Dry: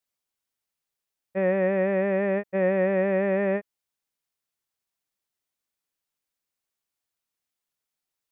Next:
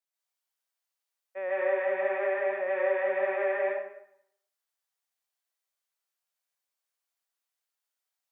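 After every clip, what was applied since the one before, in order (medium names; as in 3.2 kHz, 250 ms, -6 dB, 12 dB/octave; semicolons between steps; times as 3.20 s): high-pass 500 Hz 24 dB/octave; plate-style reverb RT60 0.73 s, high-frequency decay 0.8×, pre-delay 120 ms, DRR -6 dB; trim -7.5 dB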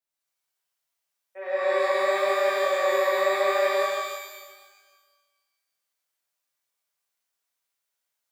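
pitch-shifted reverb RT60 1.4 s, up +12 st, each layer -8 dB, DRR -7 dB; trim -3.5 dB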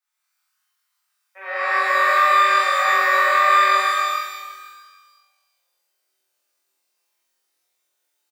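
comb 5.6 ms, depth 56%; on a send: flutter echo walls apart 4 m, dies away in 0.76 s; on the sum: high-pass sweep 1.2 kHz -> 310 Hz, 5.02–6.10 s; trim +2.5 dB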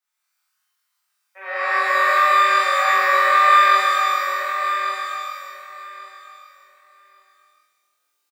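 feedback delay 1141 ms, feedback 18%, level -8 dB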